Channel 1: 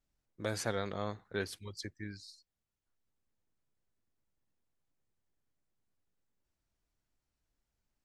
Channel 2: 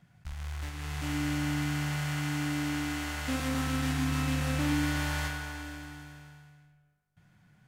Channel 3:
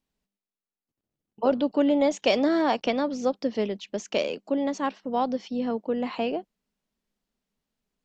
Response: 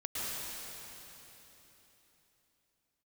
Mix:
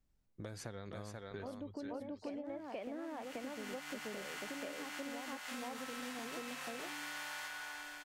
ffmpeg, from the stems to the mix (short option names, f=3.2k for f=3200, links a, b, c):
-filter_complex "[0:a]volume=-1.5dB,asplit=3[a][b][c];[b]volume=-11dB[d];[1:a]highpass=710,adelay=2200,volume=-2.5dB[e];[2:a]lowpass=f=2.5k:w=0.5412,lowpass=f=2.5k:w=1.3066,volume=-10dB,asplit=2[f][g];[g]volume=-3dB[h];[c]apad=whole_len=435593[i];[e][i]sidechaincompress=threshold=-57dB:ratio=8:attack=38:release=1400[j];[a][f]amix=inputs=2:normalize=0,lowshelf=f=250:g=8,acompressor=threshold=-46dB:ratio=2,volume=0dB[k];[d][h]amix=inputs=2:normalize=0,aecho=0:1:482:1[l];[j][k][l]amix=inputs=3:normalize=0,acompressor=threshold=-41dB:ratio=6"